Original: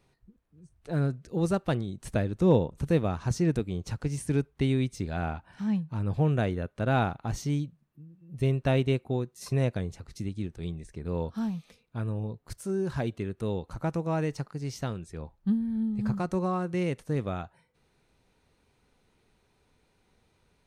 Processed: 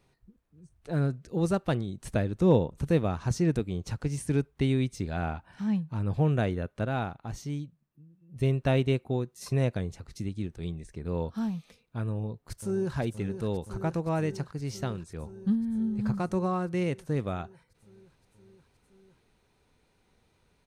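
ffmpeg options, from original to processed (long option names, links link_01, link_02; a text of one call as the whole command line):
ffmpeg -i in.wav -filter_complex "[0:a]asplit=2[link_01][link_02];[link_02]afade=type=in:start_time=12.1:duration=0.01,afade=type=out:start_time=12.95:duration=0.01,aecho=0:1:520|1040|1560|2080|2600|3120|3640|4160|4680|5200|5720|6240:0.316228|0.252982|0.202386|0.161909|0.129527|0.103622|0.0828972|0.0663178|0.0530542|0.0424434|0.0339547|0.0271638[link_03];[link_01][link_03]amix=inputs=2:normalize=0,asplit=3[link_04][link_05][link_06];[link_04]atrim=end=6.862[link_07];[link_05]atrim=start=6.858:end=8.362,asetpts=PTS-STARTPTS,volume=-5.5dB[link_08];[link_06]atrim=start=8.358[link_09];[link_07][link_08]acrossfade=duration=0.004:curve1=hsin:curve2=hsin[link_10];[link_10][link_09]acrossfade=duration=0.004:curve1=hsin:curve2=hsin" out.wav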